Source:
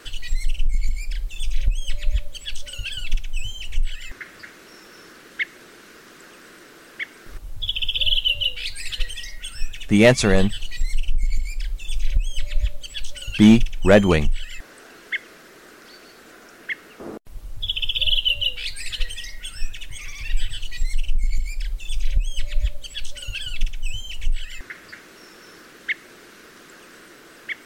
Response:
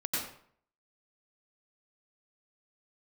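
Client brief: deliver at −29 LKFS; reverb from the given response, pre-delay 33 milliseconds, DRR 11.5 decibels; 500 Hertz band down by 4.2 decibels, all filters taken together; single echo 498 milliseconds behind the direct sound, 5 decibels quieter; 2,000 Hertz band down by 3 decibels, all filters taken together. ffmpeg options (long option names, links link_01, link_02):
-filter_complex "[0:a]equalizer=frequency=500:width_type=o:gain=-5,equalizer=frequency=2000:width_type=o:gain=-3.5,aecho=1:1:498:0.562,asplit=2[link_01][link_02];[1:a]atrim=start_sample=2205,adelay=33[link_03];[link_02][link_03]afir=irnorm=-1:irlink=0,volume=-17dB[link_04];[link_01][link_04]amix=inputs=2:normalize=0,volume=-4.5dB"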